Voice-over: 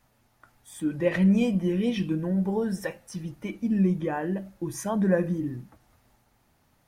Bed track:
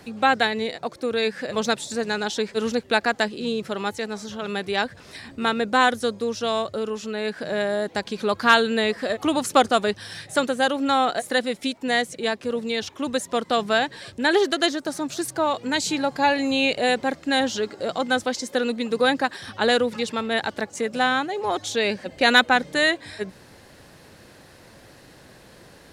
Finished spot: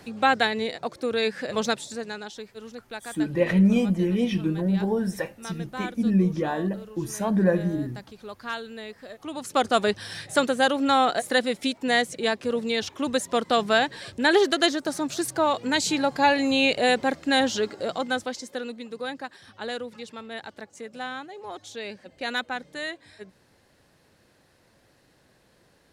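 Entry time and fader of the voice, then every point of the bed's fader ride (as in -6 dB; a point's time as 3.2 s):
2.35 s, +2.0 dB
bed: 1.64 s -1.5 dB
2.55 s -16.5 dB
9.17 s -16.5 dB
9.81 s 0 dB
17.67 s 0 dB
18.96 s -13 dB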